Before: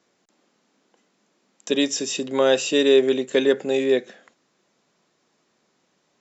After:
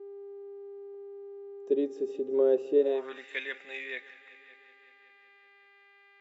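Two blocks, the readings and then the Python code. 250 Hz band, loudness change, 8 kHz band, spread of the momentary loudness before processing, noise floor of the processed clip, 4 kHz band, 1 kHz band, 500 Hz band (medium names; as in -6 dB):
-12.0 dB, -9.5 dB, no reading, 8 LU, -60 dBFS, -22.0 dB, -14.5 dB, -8.0 dB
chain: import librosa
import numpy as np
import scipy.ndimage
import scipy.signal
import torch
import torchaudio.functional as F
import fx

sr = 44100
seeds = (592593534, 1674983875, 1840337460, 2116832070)

y = fx.echo_heads(x, sr, ms=188, heads='all three', feedback_pct=49, wet_db=-22)
y = fx.dmg_buzz(y, sr, base_hz=400.0, harmonics=12, level_db=-43.0, tilt_db=-8, odd_only=False)
y = fx.filter_sweep_bandpass(y, sr, from_hz=390.0, to_hz=2100.0, start_s=2.75, end_s=3.26, q=4.5)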